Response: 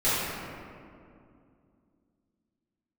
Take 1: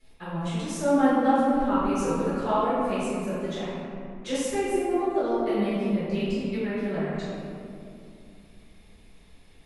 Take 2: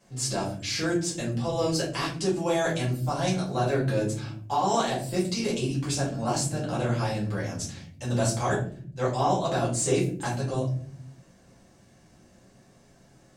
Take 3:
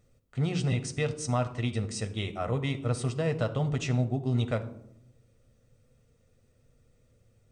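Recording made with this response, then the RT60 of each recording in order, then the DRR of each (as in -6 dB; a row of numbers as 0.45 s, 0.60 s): 1; 2.4 s, no single decay rate, 0.80 s; -14.0 dB, -8.5 dB, 7.0 dB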